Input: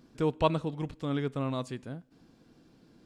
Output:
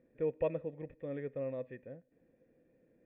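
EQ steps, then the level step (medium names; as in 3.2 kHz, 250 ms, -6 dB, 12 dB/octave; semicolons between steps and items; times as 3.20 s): cascade formant filter e; bass shelf 470 Hz +6 dB; peaking EQ 2.6 kHz +3 dB 2 oct; +1.0 dB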